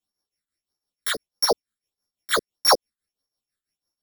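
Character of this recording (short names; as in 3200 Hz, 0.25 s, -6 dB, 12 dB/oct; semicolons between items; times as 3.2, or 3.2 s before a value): a buzz of ramps at a fixed pitch in blocks of 8 samples; phasing stages 8, 1.6 Hz, lowest notch 760–2900 Hz; tremolo triangle 6 Hz, depth 80%; a shimmering, thickened sound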